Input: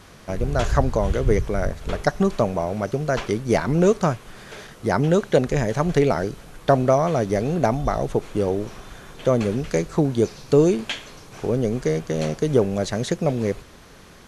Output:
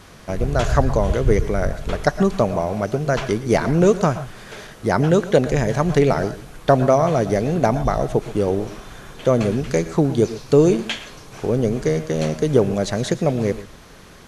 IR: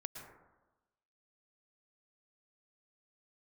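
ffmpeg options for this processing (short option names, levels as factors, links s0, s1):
-filter_complex "[0:a]asplit=2[s0][s1];[1:a]atrim=start_sample=2205,atrim=end_sample=6174[s2];[s1][s2]afir=irnorm=-1:irlink=0,volume=1.58[s3];[s0][s3]amix=inputs=2:normalize=0,volume=0.668"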